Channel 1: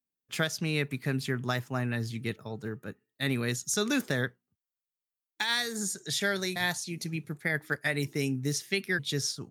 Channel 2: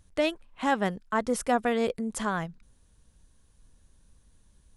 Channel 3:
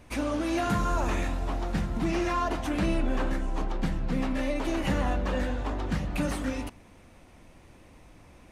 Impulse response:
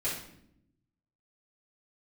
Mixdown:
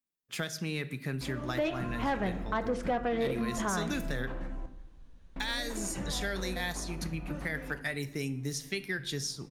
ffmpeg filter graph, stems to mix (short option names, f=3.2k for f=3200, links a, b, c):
-filter_complex "[0:a]volume=-3dB,asplit=2[a][b];[b]volume=-17dB[c];[1:a]lowpass=3.4k,adelay=1400,volume=2dB,asplit=2[d][e];[e]volume=-14.5dB[f];[2:a]highshelf=f=3.9k:g=-11.5,adelay=1100,volume=-11dB,asplit=3[g][h][i];[g]atrim=end=4.66,asetpts=PTS-STARTPTS,afade=t=out:st=4.656:d=0.004:c=hsin[j];[h]atrim=start=4.66:end=5.36,asetpts=PTS-STARTPTS,volume=0[k];[i]atrim=start=5.36,asetpts=PTS-STARTPTS,afade=t=in:d=0.004:c=hsin[l];[j][k][l]concat=n=3:v=0:a=1,asplit=3[m][n][o];[n]volume=-12dB[p];[o]volume=-22dB[q];[3:a]atrim=start_sample=2205[r];[c][f][p]amix=inputs=3:normalize=0[s];[s][r]afir=irnorm=-1:irlink=0[t];[q]aecho=0:1:364:1[u];[a][d][m][t][u]amix=inputs=5:normalize=0,asoftclip=type=tanh:threshold=-16dB,acompressor=threshold=-32dB:ratio=2"